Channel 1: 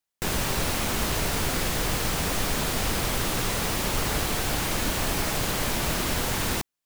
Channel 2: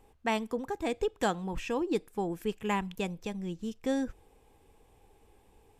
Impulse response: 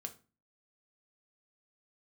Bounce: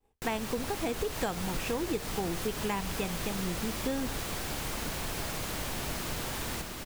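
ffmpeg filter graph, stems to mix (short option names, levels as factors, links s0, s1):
-filter_complex "[0:a]volume=0.316,asplit=2[s0][s1];[s1]volume=0.668[s2];[1:a]agate=range=0.0224:threshold=0.00282:ratio=3:detection=peak,volume=1,asplit=2[s3][s4];[s4]volume=0.447[s5];[2:a]atrim=start_sample=2205[s6];[s5][s6]afir=irnorm=-1:irlink=0[s7];[s2]aecho=0:1:712:1[s8];[s0][s3][s7][s8]amix=inputs=4:normalize=0,acompressor=threshold=0.0398:ratio=6"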